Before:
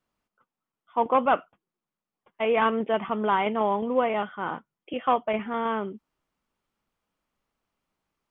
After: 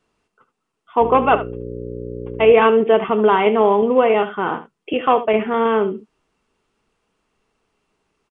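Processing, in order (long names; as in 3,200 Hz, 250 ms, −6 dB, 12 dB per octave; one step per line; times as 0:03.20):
notch filter 550 Hz, Q 12
in parallel at +0.5 dB: downward compressor, threshold −32 dBFS, peak gain reduction 14.5 dB
on the sum: downsampling to 22,050 Hz
0:01.00–0:02.52: hum with harmonics 60 Hz, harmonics 9, −36 dBFS −3 dB per octave
hollow resonant body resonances 420/2,700 Hz, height 9 dB, ringing for 30 ms
on a send: ambience of single reflections 27 ms −16.5 dB, 74 ms −13.5 dB
on the sum: level +4.5 dB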